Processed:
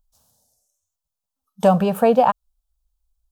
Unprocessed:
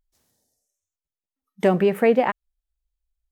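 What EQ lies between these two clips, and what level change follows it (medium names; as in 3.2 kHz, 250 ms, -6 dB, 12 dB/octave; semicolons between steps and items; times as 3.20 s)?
static phaser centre 840 Hz, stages 4; +8.0 dB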